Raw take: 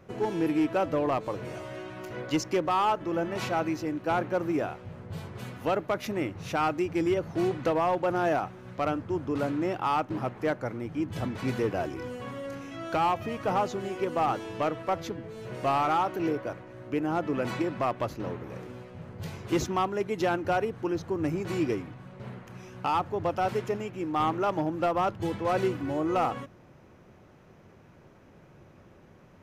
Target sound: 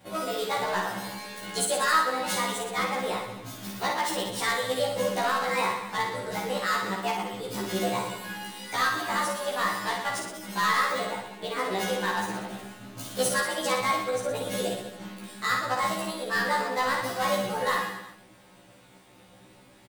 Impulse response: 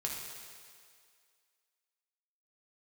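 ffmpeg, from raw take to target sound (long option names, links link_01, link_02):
-filter_complex "[0:a]afftfilt=real='re':imag='-im':win_size=2048:overlap=0.75,asplit=2[link_01][link_02];[link_02]adelay=15,volume=-5.5dB[link_03];[link_01][link_03]amix=inputs=2:normalize=0,asplit=2[link_04][link_05];[link_05]aecho=0:1:80|172|277.8|399.5|539.4:0.631|0.398|0.251|0.158|0.1[link_06];[link_04][link_06]amix=inputs=2:normalize=0,asetrate=65268,aresample=44100,crystalizer=i=3.5:c=0"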